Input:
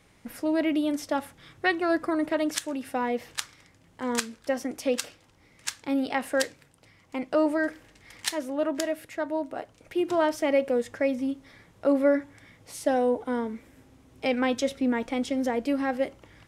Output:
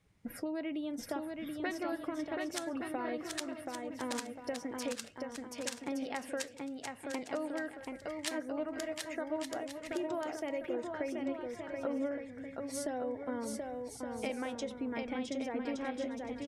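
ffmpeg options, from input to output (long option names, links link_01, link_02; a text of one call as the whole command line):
ffmpeg -i in.wav -filter_complex "[0:a]afftdn=noise_reduction=15:noise_floor=-48,acompressor=threshold=-35dB:ratio=6,asplit=2[link_01][link_02];[link_02]aecho=0:1:730|1168|1431|1588|1683:0.631|0.398|0.251|0.158|0.1[link_03];[link_01][link_03]amix=inputs=2:normalize=0,volume=-1dB" out.wav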